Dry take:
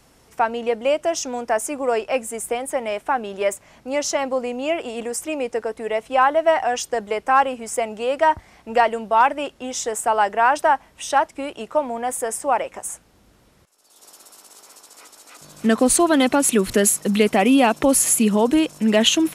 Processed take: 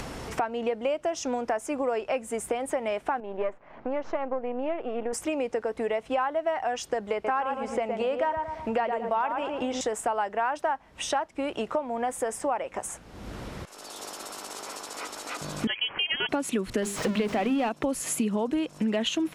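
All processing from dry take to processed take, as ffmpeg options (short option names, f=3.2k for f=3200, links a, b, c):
-filter_complex "[0:a]asettb=1/sr,asplit=3[a][b][c];[a]atrim=end=3.204[d];[b]atrim=start=3.2:end=5.13,asetpts=PTS-STARTPTS,afade=t=in:d=0.004:c=qsin,afade=t=out:st=1.926:d=0.004:c=qsin,aeval=exprs='if(lt(val(0),0),0.447*val(0),val(0))':c=same,lowpass=1.5k,equalizer=f=82:w=0.48:g=-13.5[e];[c]atrim=start=5.126[f];[d][e]acrossfade=d=0.004:c1=hsin:c2=qsin[g];[g][f]acrossfade=d=0.004:c1=qsin:c2=hsin,asettb=1/sr,asplit=3[h][i][j];[h]atrim=end=7.134[k];[i]atrim=start=7.13:end=9.81,asetpts=PTS-STARTPTS,afade=t=in:d=0.004:c=qsin,afade=t=out:st=2.676:d=0.004:c=qsin,acrossover=split=4700[l][m];[m]acompressor=threshold=-48dB:ratio=4:attack=1:release=60[n];[l][n]amix=inputs=2:normalize=0,asplit=2[o][p];[p]adelay=113,lowpass=f=2k:p=1,volume=-6dB,asplit=2[q][r];[r]adelay=113,lowpass=f=2k:p=1,volume=0.3,asplit=2[s][t];[t]adelay=113,lowpass=f=2k:p=1,volume=0.3,asplit=2[u][v];[v]adelay=113,lowpass=f=2k:p=1,volume=0.3[w];[o][q][s][u][w]amix=inputs=5:normalize=0,atrim=end_sample=118188[x];[j]atrim=start=9.806[y];[k][x]acrossfade=d=0.004:c1=hsin:c2=qsin[z];[z][y]acrossfade=d=0.004:c1=qsin:c2=hsin,asettb=1/sr,asplit=3[aa][ab][ac];[aa]atrim=end=15.674[ad];[ab]atrim=start=15.67:end=16.29,asetpts=PTS-STARTPTS,afade=t=in:d=0.004:c=qsin,afade=t=out:st=0.616:d=0.004:c=qsin,highpass=510,aemphasis=mode=production:type=50fm,lowpass=f=3k:t=q:w=0.5098,lowpass=f=3k:t=q:w=0.6013,lowpass=f=3k:t=q:w=0.9,lowpass=f=3k:t=q:w=2.563,afreqshift=-3500[ae];[ac]atrim=start=16.286[af];[ad][ae]acrossfade=d=0.004:c1=hsin:c2=qsin[ag];[ag][af]acrossfade=d=0.004:c1=qsin:c2=hsin,asettb=1/sr,asplit=3[ah][ai][aj];[ah]atrim=end=16.824[ak];[ai]atrim=start=16.82:end=17.69,asetpts=PTS-STARTPTS,afade=t=in:d=0.004:c=qsin,afade=t=out:st=0.866:d=0.004:c=qsin,aeval=exprs='val(0)+0.5*0.106*sgn(val(0))':c=same,equalizer=f=12k:w=0.84:g=-6,bandreject=f=50:t=h:w=6,bandreject=f=100:t=h:w=6,bandreject=f=150:t=h:w=6,bandreject=f=200:t=h:w=6,bandreject=f=250:t=h:w=6,bandreject=f=300:t=h:w=6,bandreject=f=350:t=h:w=6,bandreject=f=400:t=h:w=6[al];[aj]atrim=start=17.686[am];[ak][al]acrossfade=d=0.004:c1=hsin:c2=qsin[an];[an][am]acrossfade=d=0.004:c1=qsin:c2=hsin,acompressor=mode=upward:threshold=-21dB:ratio=2.5,aemphasis=mode=reproduction:type=50kf,acompressor=threshold=-25dB:ratio=5"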